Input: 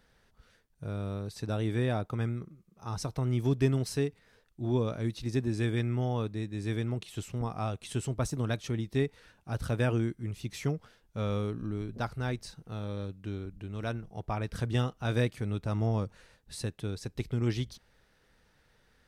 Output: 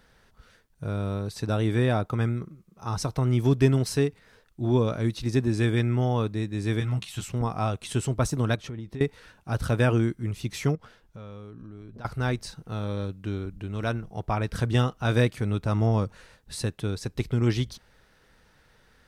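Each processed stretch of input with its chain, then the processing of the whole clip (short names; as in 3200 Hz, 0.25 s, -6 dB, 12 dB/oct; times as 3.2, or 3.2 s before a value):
6.8–7.29 bell 400 Hz -12.5 dB 1.3 oct + doubler 15 ms -4 dB
8.55–9.01 high shelf 3500 Hz -10 dB + compressor 10:1, threshold -38 dBFS
10.75–12.05 high shelf 5200 Hz -6 dB + compressor, threshold -47 dBFS
whole clip: bell 1200 Hz +4 dB 0.51 oct; notch 1200 Hz, Q 18; gain +6 dB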